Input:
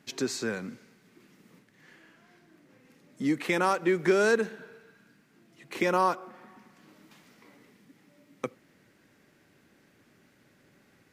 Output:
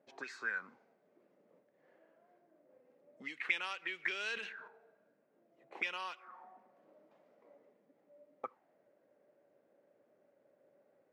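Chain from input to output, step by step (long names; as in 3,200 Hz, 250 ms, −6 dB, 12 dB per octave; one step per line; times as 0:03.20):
envelope filter 560–2,900 Hz, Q 5.5, up, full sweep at −23 dBFS
0:04.20–0:04.68: level that may fall only so fast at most 56 dB per second
level +4.5 dB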